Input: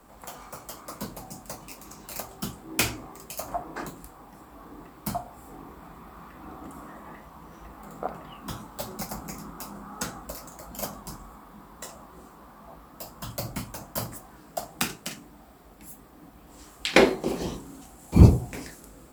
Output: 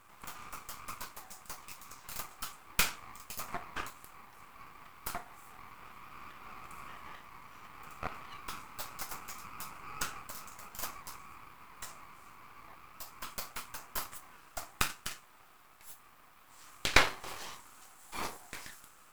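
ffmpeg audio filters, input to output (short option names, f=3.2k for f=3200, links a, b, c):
-af "highpass=f=1.2k:t=q:w=2,aeval=exprs='max(val(0),0)':c=same,volume=-1dB"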